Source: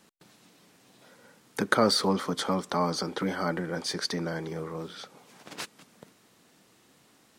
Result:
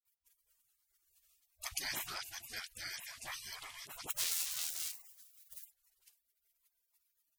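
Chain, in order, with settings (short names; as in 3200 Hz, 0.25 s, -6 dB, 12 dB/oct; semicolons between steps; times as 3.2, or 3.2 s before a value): 4.05–5.59 half-waves squared off; spectral gate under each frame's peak -30 dB weak; dispersion highs, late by 52 ms, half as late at 690 Hz; gain +7.5 dB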